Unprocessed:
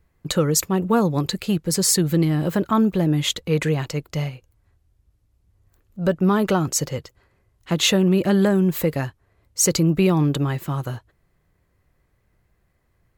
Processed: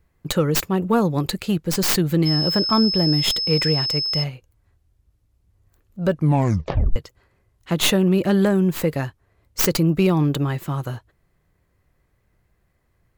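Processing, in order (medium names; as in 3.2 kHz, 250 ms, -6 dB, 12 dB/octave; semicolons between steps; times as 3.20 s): tracing distortion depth 0.14 ms; 2.25–4.22 s: whistle 5.2 kHz -21 dBFS; 6.10 s: tape stop 0.86 s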